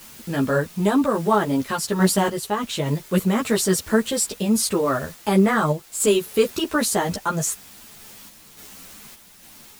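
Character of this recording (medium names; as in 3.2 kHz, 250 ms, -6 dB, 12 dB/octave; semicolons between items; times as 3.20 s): a quantiser's noise floor 8-bit, dither triangular; random-step tremolo 3.5 Hz; a shimmering, thickened sound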